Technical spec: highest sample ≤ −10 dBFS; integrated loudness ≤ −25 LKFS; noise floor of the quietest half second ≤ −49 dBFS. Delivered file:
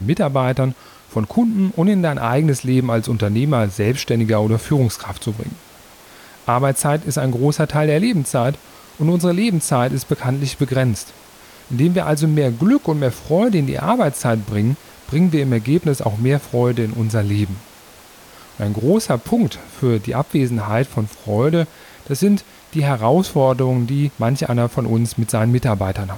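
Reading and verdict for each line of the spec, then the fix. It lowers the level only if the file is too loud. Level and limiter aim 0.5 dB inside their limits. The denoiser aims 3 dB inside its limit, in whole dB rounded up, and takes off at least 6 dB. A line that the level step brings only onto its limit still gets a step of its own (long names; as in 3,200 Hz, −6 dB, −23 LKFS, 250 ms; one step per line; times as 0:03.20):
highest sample −4.5 dBFS: out of spec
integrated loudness −18.5 LKFS: out of spec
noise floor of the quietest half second −44 dBFS: out of spec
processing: level −7 dB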